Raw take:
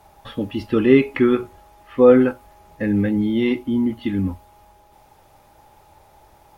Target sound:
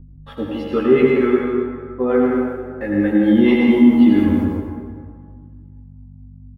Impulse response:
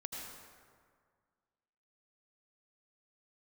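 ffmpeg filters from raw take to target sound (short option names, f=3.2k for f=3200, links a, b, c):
-filter_complex "[0:a]asettb=1/sr,asplit=3[a][b][c];[a]atrim=end=1.374[d];[b]atrim=start=1.37:end=2,asetpts=PTS-STARTPTS,afade=t=in:d=0.004:c=qsin,afade=t=out:st=0.626:d=0.004:c=qsin,lowpass=1.3k[e];[c]atrim=start=1.996[f];[d][e]acrossfade=d=0.004:c1=hsin:c2=qsin[g];[g][f]acrossfade=d=0.004:c1=qsin:c2=hsin,agate=range=-50dB:threshold=-37dB:ratio=16:detection=peak,highpass=62,equalizer=f=710:t=o:w=2.6:g=10,dynaudnorm=f=260:g=7:m=15dB,aeval=exprs='val(0)+0.0178*(sin(2*PI*50*n/s)+sin(2*PI*2*50*n/s)/2+sin(2*PI*3*50*n/s)/3+sin(2*PI*4*50*n/s)/4+sin(2*PI*5*50*n/s)/5)':c=same,acrossover=split=450[h][i];[h]aeval=exprs='val(0)*(1-0.7/2+0.7/2*cos(2*PI*4.4*n/s))':c=same[j];[i]aeval=exprs='val(0)*(1-0.7/2-0.7/2*cos(2*PI*4.4*n/s))':c=same[k];[j][k]amix=inputs=2:normalize=0,asplit=2[l][m];[m]adelay=13,volume=-2.5dB[n];[l][n]amix=inputs=2:normalize=0,asplit=2[o][p];[p]adelay=160,highpass=300,lowpass=3.4k,asoftclip=type=hard:threshold=-11.5dB,volume=-13dB[q];[o][q]amix=inputs=2:normalize=0[r];[1:a]atrim=start_sample=2205[s];[r][s]afir=irnorm=-1:irlink=0,volume=2dB"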